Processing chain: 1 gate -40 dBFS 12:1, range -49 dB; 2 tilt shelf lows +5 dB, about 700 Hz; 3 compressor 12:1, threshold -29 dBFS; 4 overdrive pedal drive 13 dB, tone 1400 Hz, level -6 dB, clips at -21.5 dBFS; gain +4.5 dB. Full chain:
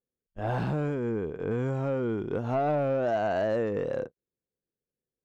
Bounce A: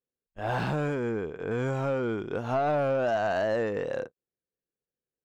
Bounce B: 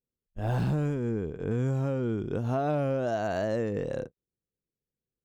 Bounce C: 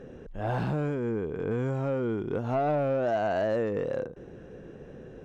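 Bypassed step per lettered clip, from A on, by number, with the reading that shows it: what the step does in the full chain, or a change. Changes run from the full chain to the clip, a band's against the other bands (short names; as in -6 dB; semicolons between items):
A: 2, momentary loudness spread change +1 LU; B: 4, momentary loudness spread change +1 LU; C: 1, momentary loudness spread change +13 LU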